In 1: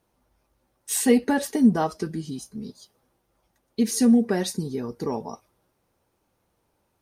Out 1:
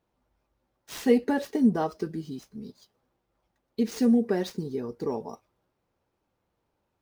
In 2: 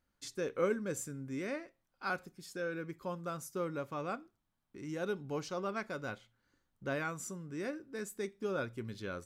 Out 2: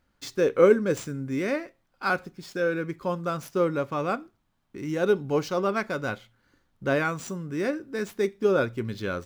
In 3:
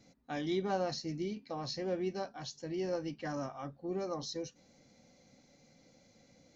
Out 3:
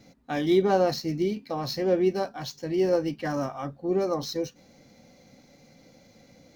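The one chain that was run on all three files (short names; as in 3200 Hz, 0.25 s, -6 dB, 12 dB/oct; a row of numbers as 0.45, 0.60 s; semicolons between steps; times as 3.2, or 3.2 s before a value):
median filter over 5 samples; dynamic EQ 420 Hz, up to +5 dB, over -39 dBFS, Q 1.4; match loudness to -27 LUFS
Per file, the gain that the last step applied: -5.5, +10.5, +9.0 dB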